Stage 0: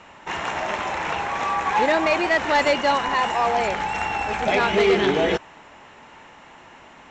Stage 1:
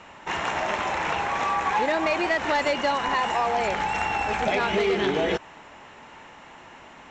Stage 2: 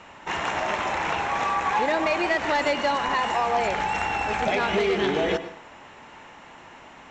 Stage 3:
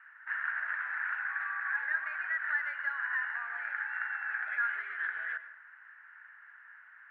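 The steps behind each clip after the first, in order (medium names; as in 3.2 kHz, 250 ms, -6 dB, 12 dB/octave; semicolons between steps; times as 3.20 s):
compression, threshold -20 dBFS, peak gain reduction 6 dB
reverberation RT60 0.50 s, pre-delay 94 ms, DRR 12.5 dB
Butterworth band-pass 1.6 kHz, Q 4.3; trim +2 dB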